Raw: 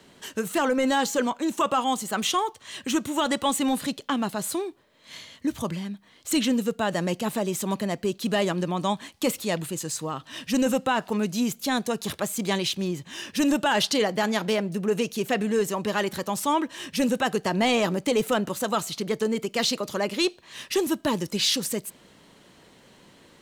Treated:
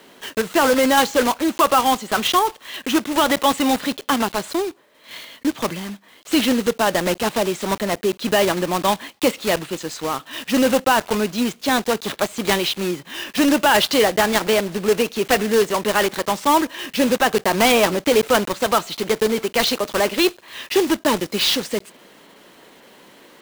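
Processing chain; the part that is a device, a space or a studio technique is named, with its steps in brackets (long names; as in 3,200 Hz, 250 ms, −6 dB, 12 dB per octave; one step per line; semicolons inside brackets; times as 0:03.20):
early digital voice recorder (band-pass filter 270–3,800 Hz; one scale factor per block 3 bits)
level +8 dB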